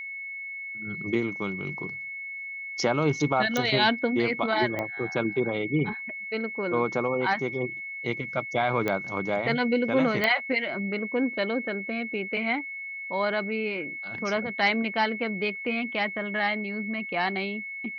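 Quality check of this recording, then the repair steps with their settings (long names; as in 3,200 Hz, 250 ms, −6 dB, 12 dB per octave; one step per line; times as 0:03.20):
whistle 2,200 Hz −34 dBFS
0:03.57: click −13 dBFS
0:04.79: click −17 dBFS
0:08.88: click −14 dBFS
0:10.24: click −11 dBFS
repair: click removal
notch filter 2,200 Hz, Q 30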